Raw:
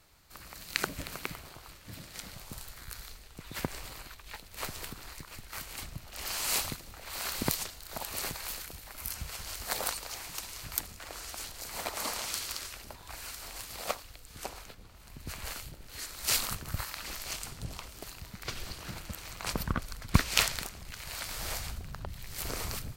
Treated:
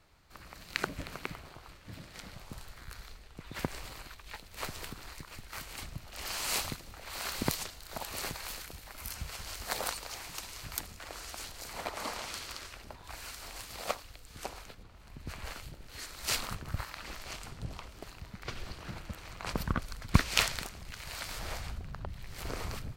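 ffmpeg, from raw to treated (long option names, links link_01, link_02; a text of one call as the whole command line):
ffmpeg -i in.wav -af "asetnsamples=nb_out_samples=441:pad=0,asendcmd='3.59 lowpass f 6700;11.73 lowpass f 2900;13.04 lowpass f 6600;14.83 lowpass f 2900;15.63 lowpass f 5000;16.35 lowpass f 2500;19.55 lowpass f 6100;21.39 lowpass f 2600',lowpass=frequency=3000:poles=1" out.wav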